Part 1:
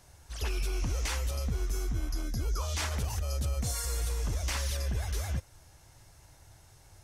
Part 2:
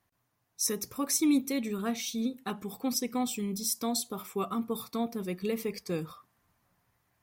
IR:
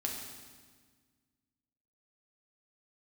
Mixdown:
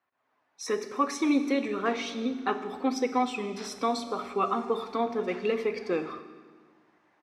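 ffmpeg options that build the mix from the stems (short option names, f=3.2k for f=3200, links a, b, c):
-filter_complex "[0:a]adelay=800,volume=-8.5dB[a];[1:a]dynaudnorm=f=150:g=3:m=9dB,flanger=delay=0.7:depth=2.8:regen=64:speed=0.91:shape=sinusoidal,volume=1dB,asplit=2[b][c];[c]volume=-5dB[d];[2:a]atrim=start_sample=2205[e];[d][e]afir=irnorm=-1:irlink=0[f];[a][b][f]amix=inputs=3:normalize=0,highpass=410,lowpass=2.3k"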